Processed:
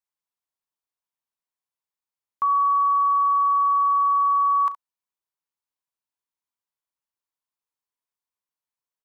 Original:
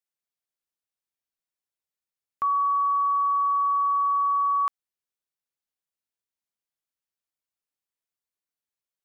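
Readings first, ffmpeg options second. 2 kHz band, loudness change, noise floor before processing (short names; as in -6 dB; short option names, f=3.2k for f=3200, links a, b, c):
n/a, +3.5 dB, under -85 dBFS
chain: -filter_complex "[0:a]equalizer=f=990:t=o:w=0.55:g=10,asplit=2[a][b];[b]aecho=0:1:36|68:0.158|0.188[c];[a][c]amix=inputs=2:normalize=0,volume=-3.5dB"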